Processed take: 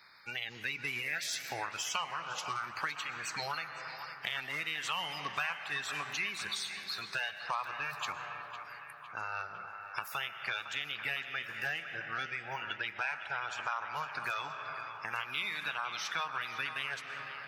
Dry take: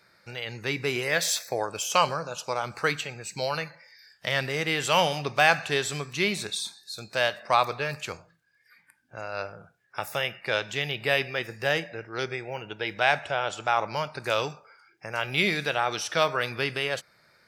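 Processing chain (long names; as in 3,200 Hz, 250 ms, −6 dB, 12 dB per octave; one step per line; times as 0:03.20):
spectral magnitudes quantised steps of 30 dB
parametric band 8,000 Hz −5.5 dB 0.44 octaves
healed spectral selection 0:02.36–0:02.68, 470–1,100 Hz
low shelf with overshoot 760 Hz −10 dB, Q 1.5
convolution reverb RT60 3.3 s, pre-delay 85 ms, DRR 13.5 dB
downward compressor 4 to 1, threshold −38 dBFS, peak gain reduction 19.5 dB
feedback echo with a band-pass in the loop 507 ms, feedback 70%, band-pass 1,500 Hz, level −9.5 dB
level +2.5 dB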